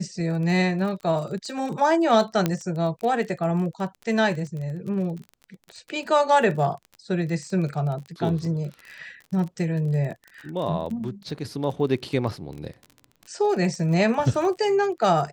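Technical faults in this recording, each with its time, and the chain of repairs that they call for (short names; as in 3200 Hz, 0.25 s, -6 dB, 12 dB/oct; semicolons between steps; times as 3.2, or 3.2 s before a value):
crackle 25/s -32 dBFS
2.46 pop -8 dBFS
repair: de-click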